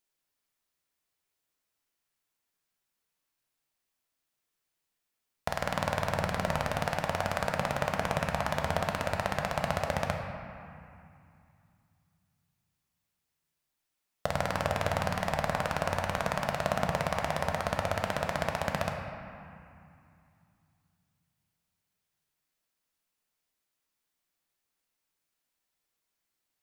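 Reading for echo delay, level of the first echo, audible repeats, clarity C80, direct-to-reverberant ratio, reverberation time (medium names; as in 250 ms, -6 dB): no echo, no echo, no echo, 4.0 dB, 1.5 dB, 2.5 s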